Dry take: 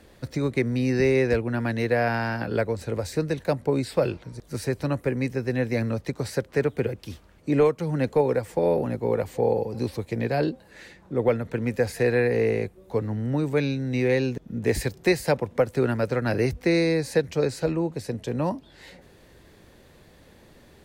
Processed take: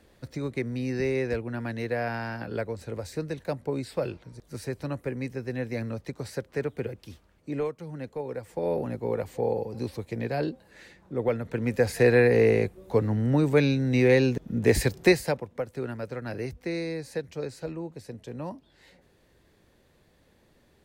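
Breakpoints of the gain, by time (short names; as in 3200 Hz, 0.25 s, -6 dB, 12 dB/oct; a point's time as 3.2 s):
6.98 s -6.5 dB
8.18 s -13.5 dB
8.77 s -4.5 dB
11.28 s -4.5 dB
12.05 s +2.5 dB
15.07 s +2.5 dB
15.48 s -10 dB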